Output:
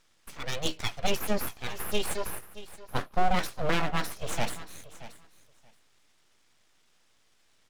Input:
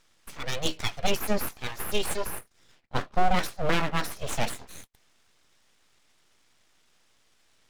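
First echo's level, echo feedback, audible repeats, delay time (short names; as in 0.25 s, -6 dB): -16.0 dB, 15%, 2, 0.627 s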